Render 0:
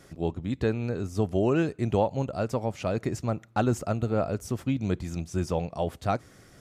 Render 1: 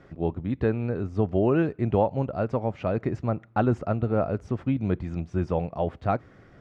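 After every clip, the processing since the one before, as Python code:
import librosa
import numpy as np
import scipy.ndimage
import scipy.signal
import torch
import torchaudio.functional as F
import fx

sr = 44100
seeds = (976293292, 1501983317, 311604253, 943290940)

y = scipy.signal.sosfilt(scipy.signal.butter(2, 2100.0, 'lowpass', fs=sr, output='sos'), x)
y = y * librosa.db_to_amplitude(2.0)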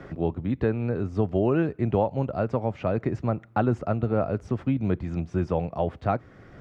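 y = fx.band_squash(x, sr, depth_pct=40)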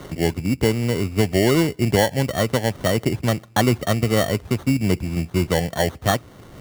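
y = fx.sample_hold(x, sr, seeds[0], rate_hz=2500.0, jitter_pct=0)
y = y * librosa.db_to_amplitude(5.5)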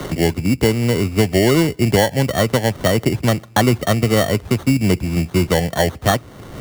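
y = fx.band_squash(x, sr, depth_pct=40)
y = y * librosa.db_to_amplitude(3.5)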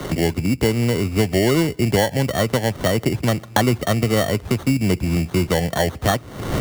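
y = fx.recorder_agc(x, sr, target_db=-9.5, rise_db_per_s=42.0, max_gain_db=30)
y = y * librosa.db_to_amplitude(-3.0)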